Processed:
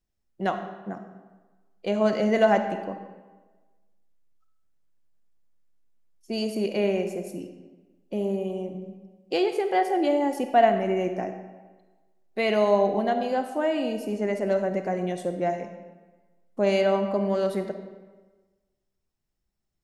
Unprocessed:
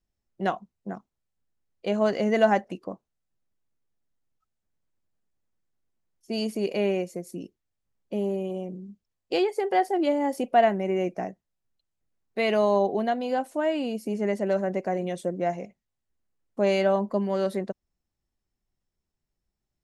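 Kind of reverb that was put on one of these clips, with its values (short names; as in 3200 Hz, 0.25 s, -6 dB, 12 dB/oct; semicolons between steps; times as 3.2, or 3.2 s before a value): digital reverb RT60 1.3 s, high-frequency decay 0.75×, pre-delay 10 ms, DRR 7 dB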